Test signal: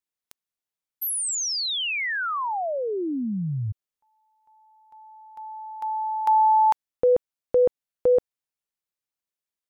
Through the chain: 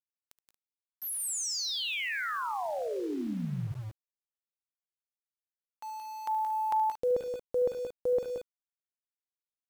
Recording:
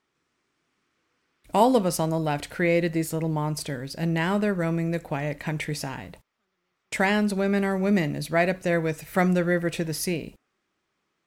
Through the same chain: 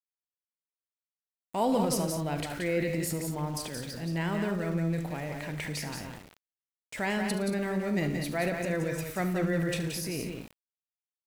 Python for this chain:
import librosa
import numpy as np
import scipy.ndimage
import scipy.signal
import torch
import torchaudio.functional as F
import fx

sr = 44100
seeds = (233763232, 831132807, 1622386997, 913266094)

y = fx.transient(x, sr, attack_db=-3, sustain_db=9)
y = fx.echo_multitap(y, sr, ms=(41, 73, 114, 175, 192, 230), db=(-17.5, -13.0, -19.0, -6.0, -13.5, -15.0))
y = np.where(np.abs(y) >= 10.0 ** (-37.5 / 20.0), y, 0.0)
y = F.gain(torch.from_numpy(y), -8.0).numpy()